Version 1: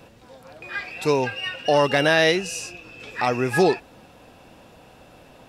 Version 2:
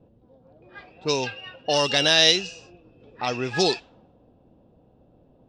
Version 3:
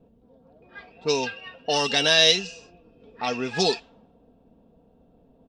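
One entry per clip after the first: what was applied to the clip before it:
level-controlled noise filter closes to 420 Hz, open at -13.5 dBFS; high-order bell 4.9 kHz +15 dB; trim -5 dB
comb 4.4 ms, depth 53%; trim -1.5 dB

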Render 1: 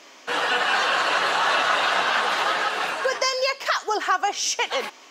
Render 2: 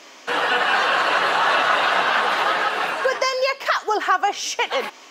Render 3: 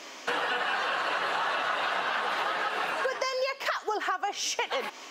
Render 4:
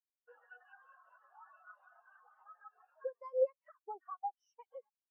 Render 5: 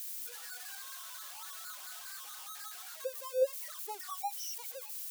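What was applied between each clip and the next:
dynamic bell 6.6 kHz, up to -7 dB, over -40 dBFS, Q 0.73; trim +3.5 dB
compression 6:1, threshold -27 dBFS, peak gain reduction 13 dB
spectral contrast expander 4:1; trim -5.5 dB
zero-crossing glitches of -34.5 dBFS; trim +1.5 dB

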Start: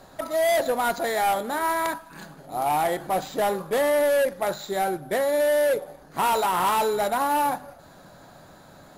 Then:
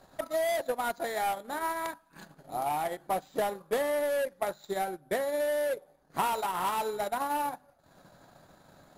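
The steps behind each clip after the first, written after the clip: transient shaper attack +6 dB, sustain -11 dB; trim -8.5 dB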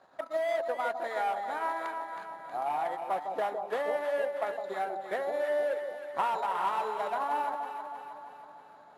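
band-pass filter 1.1 kHz, Q 0.67; echo whose repeats swap between lows and highs 159 ms, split 910 Hz, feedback 74%, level -5 dB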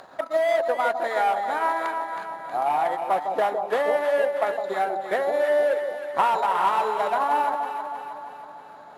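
upward compressor, threshold -49 dBFS; trim +8.5 dB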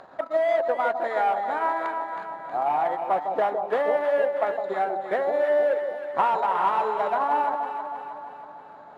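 low-pass 1.8 kHz 6 dB/octave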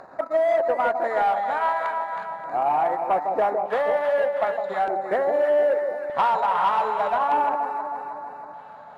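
LFO notch square 0.41 Hz 340–3200 Hz; in parallel at -4 dB: sine folder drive 5 dB, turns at -11 dBFS; on the sum: trim -5.5 dB

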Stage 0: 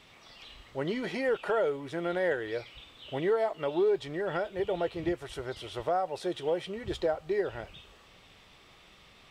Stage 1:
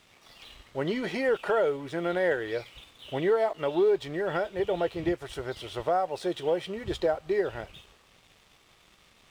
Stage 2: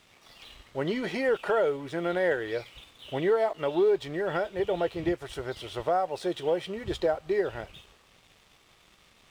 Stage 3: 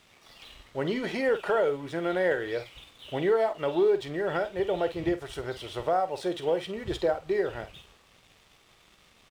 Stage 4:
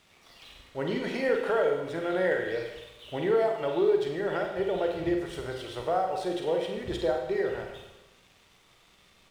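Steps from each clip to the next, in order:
crossover distortion -59 dBFS; trim +3 dB
no audible change
doubling 49 ms -12.5 dB
Schroeder reverb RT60 1 s, combs from 33 ms, DRR 3 dB; trim -2.5 dB

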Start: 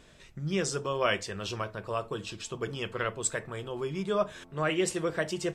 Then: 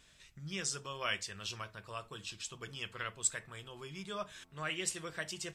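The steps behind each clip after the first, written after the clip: amplifier tone stack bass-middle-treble 5-5-5; trim +4.5 dB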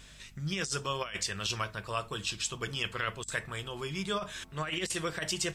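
compressor with a negative ratio -40 dBFS, ratio -0.5; hum 50 Hz, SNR 22 dB; trim +8 dB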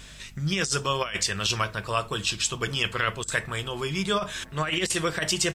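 echo from a far wall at 190 m, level -28 dB; trim +7.5 dB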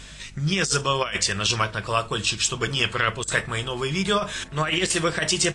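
trim +3.5 dB; AAC 48 kbps 22.05 kHz

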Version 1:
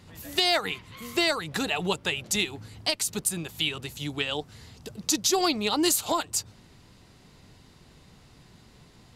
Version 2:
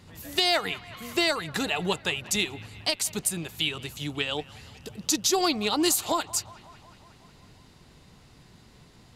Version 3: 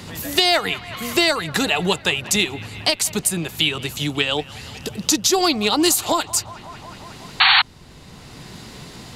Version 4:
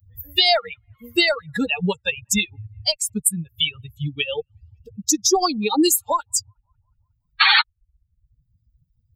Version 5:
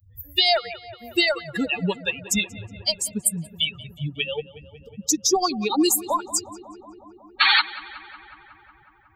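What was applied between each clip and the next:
feedback echo behind a band-pass 183 ms, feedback 70%, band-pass 1.4 kHz, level -17.5 dB
painted sound noise, 7.40–7.62 s, 730–4500 Hz -19 dBFS; three bands compressed up and down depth 40%; trim +7.5 dB
expander on every frequency bin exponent 3; trim +5 dB
filtered feedback delay 183 ms, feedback 79%, low-pass 3 kHz, level -17 dB; trim -2.5 dB

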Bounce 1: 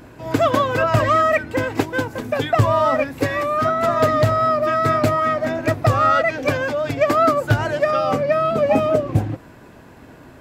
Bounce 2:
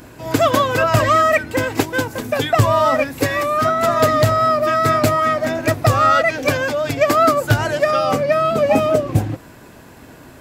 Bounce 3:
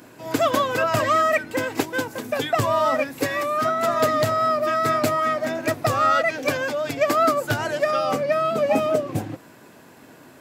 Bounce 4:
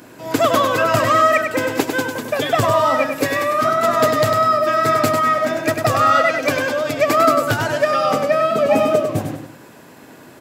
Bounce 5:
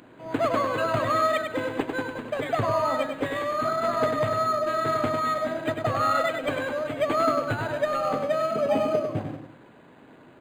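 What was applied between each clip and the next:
treble shelf 4.2 kHz +10 dB; trim +1.5 dB
high-pass 160 Hz 12 dB/octave; trim -5 dB
feedback delay 99 ms, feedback 36%, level -6 dB; trim +4 dB
decimation joined by straight lines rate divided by 8×; trim -8 dB

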